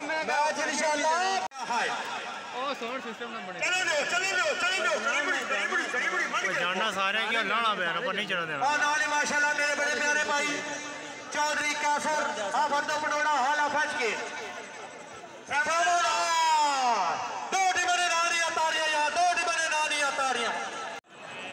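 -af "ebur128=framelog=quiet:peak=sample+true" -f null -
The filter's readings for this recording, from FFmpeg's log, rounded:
Integrated loudness:
  I:         -26.8 LUFS
  Threshold: -37.1 LUFS
Loudness range:
  LRA:         3.4 LU
  Threshold: -47.0 LUFS
  LRA low:   -28.8 LUFS
  LRA high:  -25.4 LUFS
Sample peak:
  Peak:      -14.2 dBFS
True peak:
  Peak:      -14.2 dBFS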